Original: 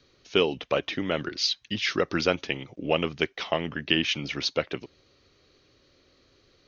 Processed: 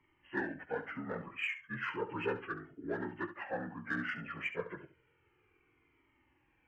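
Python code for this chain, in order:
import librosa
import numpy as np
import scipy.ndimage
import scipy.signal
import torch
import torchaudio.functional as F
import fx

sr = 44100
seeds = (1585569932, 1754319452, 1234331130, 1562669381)

p1 = fx.partial_stretch(x, sr, pct=78)
p2 = fx.high_shelf(p1, sr, hz=5100.0, db=-7.0)
p3 = 10.0 ** (-25.5 / 20.0) * np.tanh(p2 / 10.0 ** (-25.5 / 20.0))
p4 = p2 + (p3 * 10.0 ** (-8.5 / 20.0))
p5 = fx.echo_feedback(p4, sr, ms=69, feedback_pct=17, wet_db=-12)
p6 = fx.comb_cascade(p5, sr, direction='falling', hz=0.33)
y = p6 * 10.0 ** (-6.5 / 20.0)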